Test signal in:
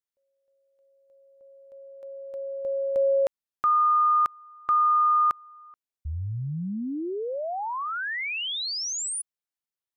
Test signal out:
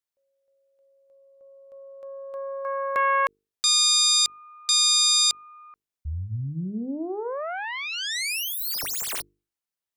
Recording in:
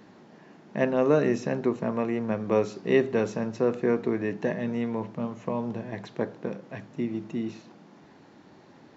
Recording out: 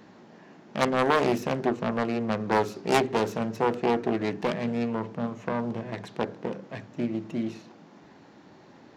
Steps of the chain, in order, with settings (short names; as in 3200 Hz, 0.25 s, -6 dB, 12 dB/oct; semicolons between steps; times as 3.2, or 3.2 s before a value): self-modulated delay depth 0.72 ms; notches 50/100/150/200/250/300/350/400/450 Hz; gain +1.5 dB